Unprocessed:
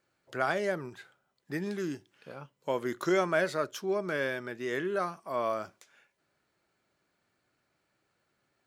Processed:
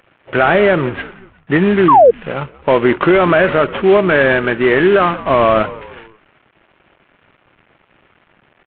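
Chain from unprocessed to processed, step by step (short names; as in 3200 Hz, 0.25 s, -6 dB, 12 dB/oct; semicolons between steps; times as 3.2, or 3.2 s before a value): CVSD 16 kbps; 5.21–5.63 low shelf 190 Hz +9 dB; frequency-shifting echo 0.179 s, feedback 47%, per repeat -71 Hz, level -21 dB; 1.88–2.11 painted sound fall 440–1200 Hz -25 dBFS; maximiser +24 dB; gain -1 dB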